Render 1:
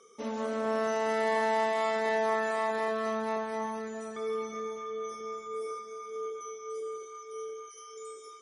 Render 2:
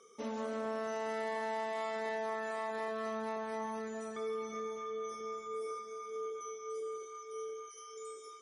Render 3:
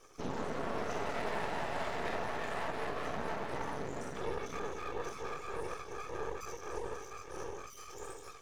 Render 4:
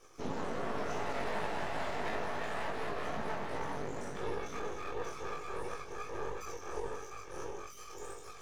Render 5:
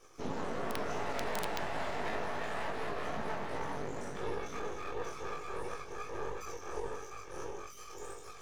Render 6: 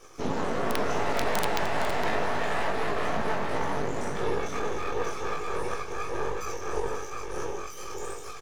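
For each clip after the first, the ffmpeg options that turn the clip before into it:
-af "acompressor=threshold=-33dB:ratio=3,volume=-2.5dB"
-af "afftfilt=real='hypot(re,im)*cos(2*PI*random(0))':imag='hypot(re,im)*sin(2*PI*random(1))':win_size=512:overlap=0.75,aeval=exprs='max(val(0),0)':c=same,volume=10.5dB"
-af "areverse,acompressor=mode=upward:threshold=-46dB:ratio=2.5,areverse,flanger=delay=18.5:depth=2.8:speed=2.8,volume=3dB"
-af "aeval=exprs='(mod(13.3*val(0)+1,2)-1)/13.3':c=same"
-af "aecho=1:1:462:0.316,volume=8.5dB"

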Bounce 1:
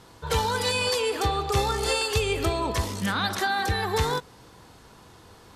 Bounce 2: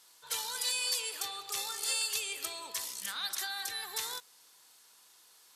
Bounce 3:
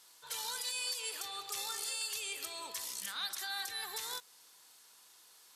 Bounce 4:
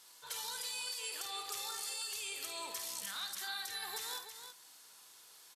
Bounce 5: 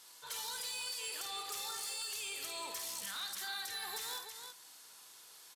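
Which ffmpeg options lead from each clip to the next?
-af "highpass=f=130:p=1,aderivative"
-af "alimiter=level_in=4dB:limit=-24dB:level=0:latency=1:release=157,volume=-4dB"
-filter_complex "[0:a]acompressor=threshold=-40dB:ratio=6,asplit=2[a][b];[b]aecho=0:1:51|325:0.422|0.376[c];[a][c]amix=inputs=2:normalize=0,volume=1dB"
-af "asoftclip=type=tanh:threshold=-36.5dB,volume=2dB"

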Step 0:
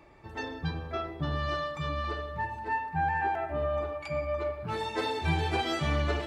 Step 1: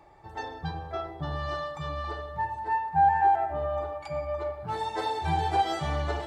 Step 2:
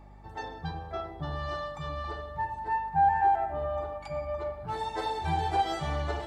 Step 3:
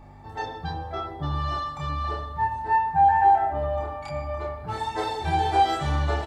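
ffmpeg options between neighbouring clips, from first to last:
-af "equalizer=f=250:t=o:w=0.33:g=-10,equalizer=f=800:t=o:w=0.33:g=11,equalizer=f=2.5k:t=o:w=0.33:g=-8,equalizer=f=8k:t=o:w=0.33:g=3,volume=-1.5dB"
-af "aeval=exprs='val(0)+0.00398*(sin(2*PI*50*n/s)+sin(2*PI*2*50*n/s)/2+sin(2*PI*3*50*n/s)/3+sin(2*PI*4*50*n/s)/4+sin(2*PI*5*50*n/s)/5)':c=same,volume=-2dB"
-filter_complex "[0:a]asplit=2[a][b];[b]adelay=28,volume=-2dB[c];[a][c]amix=inputs=2:normalize=0,volume=3.5dB"

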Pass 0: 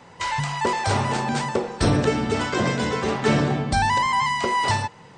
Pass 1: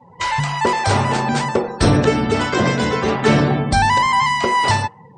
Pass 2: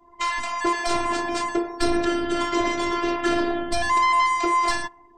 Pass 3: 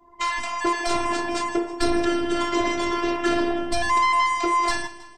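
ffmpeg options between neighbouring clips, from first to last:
-af "afftdn=nr=28:nf=-42,volume=5.5dB"
-af "acontrast=73,afftfilt=real='hypot(re,im)*cos(PI*b)':imag='0':win_size=512:overlap=0.75,volume=-7.5dB"
-af "aecho=1:1:160|320|480|640|800:0.158|0.0808|0.0412|0.021|0.0107"

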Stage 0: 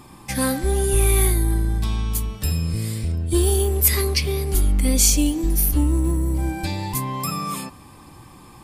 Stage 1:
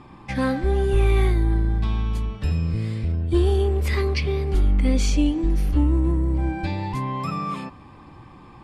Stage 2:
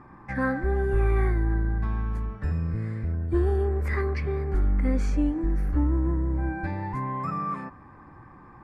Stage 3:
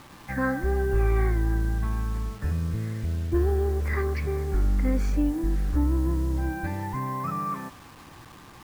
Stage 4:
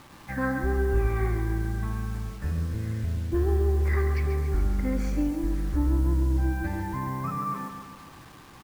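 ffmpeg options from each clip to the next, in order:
-af "lowpass=2.8k"
-af "highshelf=f=2.3k:t=q:w=3:g=-10.5,volume=-4.5dB"
-af "acrusher=bits=7:mix=0:aa=0.000001"
-af "aecho=1:1:137|274|411|548|685|822|959:0.398|0.231|0.134|0.0777|0.0451|0.0261|0.0152,volume=-2dB"

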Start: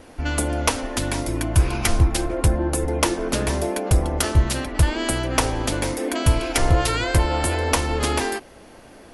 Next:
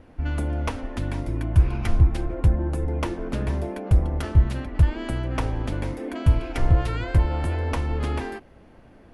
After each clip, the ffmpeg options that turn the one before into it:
-af "bass=f=250:g=9,treble=f=4k:g=-14,volume=-8.5dB"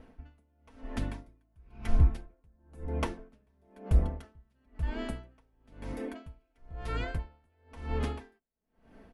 -af "aecho=1:1:4.5:0.47,aeval=exprs='val(0)*pow(10,-40*(0.5-0.5*cos(2*PI*1*n/s))/20)':c=same,volume=-4.5dB"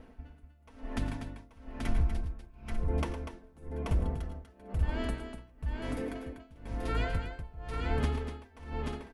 -af "alimiter=limit=-22dB:level=0:latency=1:release=157,aecho=1:1:89|110|244|833|893:0.126|0.282|0.355|0.631|0.224,volume=1.5dB"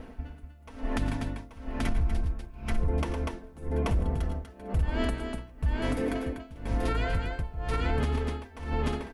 -af "alimiter=level_in=3.5dB:limit=-24dB:level=0:latency=1:release=213,volume=-3.5dB,volume=9dB"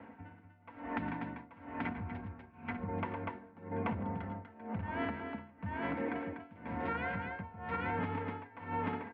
-af "afreqshift=24,highpass=f=110:w=0.5412,highpass=f=110:w=1.3066,equalizer=f=130:t=q:w=4:g=-8,equalizer=f=210:t=q:w=4:g=9,equalizer=f=340:t=q:w=4:g=-4,equalizer=f=910:t=q:w=4:g=9,equalizer=f=1.5k:t=q:w=4:g=5,equalizer=f=2.1k:t=q:w=4:g=6,lowpass=f=2.7k:w=0.5412,lowpass=f=2.7k:w=1.3066,volume=-7.5dB"

